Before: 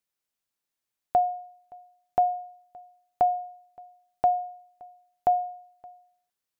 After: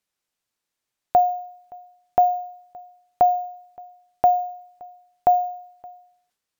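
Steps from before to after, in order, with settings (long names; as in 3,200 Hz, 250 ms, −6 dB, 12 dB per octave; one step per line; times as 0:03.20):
bad sample-rate conversion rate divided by 2×, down filtered, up hold
level that may fall only so fast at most 89 dB per second
level +5.5 dB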